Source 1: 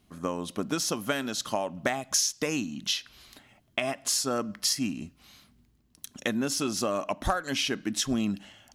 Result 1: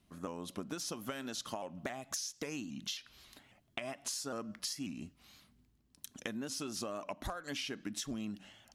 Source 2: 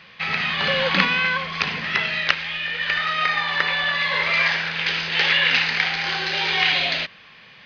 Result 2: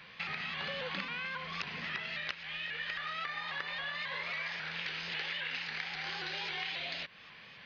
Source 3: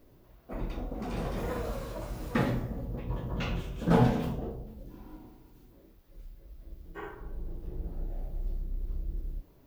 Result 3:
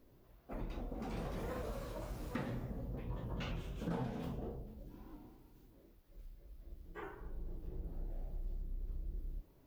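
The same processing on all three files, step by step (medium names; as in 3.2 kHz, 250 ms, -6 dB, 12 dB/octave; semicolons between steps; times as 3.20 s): compression 5:1, threshold -31 dBFS; vibrato with a chosen wave saw up 3.7 Hz, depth 100 cents; trim -6 dB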